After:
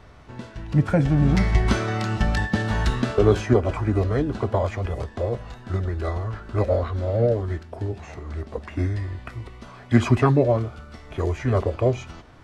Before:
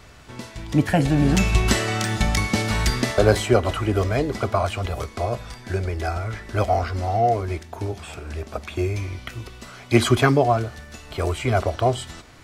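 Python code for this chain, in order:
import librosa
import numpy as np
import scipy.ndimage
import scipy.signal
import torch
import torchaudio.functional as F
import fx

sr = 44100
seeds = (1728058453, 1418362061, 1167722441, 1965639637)

y = fx.formant_shift(x, sr, semitones=-4)
y = fx.high_shelf(y, sr, hz=2400.0, db=-11.0)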